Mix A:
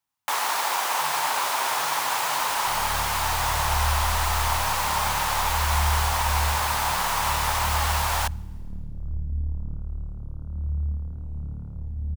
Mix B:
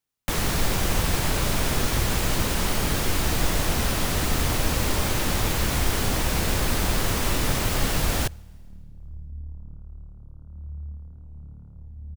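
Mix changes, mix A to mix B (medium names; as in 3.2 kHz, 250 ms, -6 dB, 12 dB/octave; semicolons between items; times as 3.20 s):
first sound: remove resonant high-pass 910 Hz, resonance Q 3.6; second sound -9.0 dB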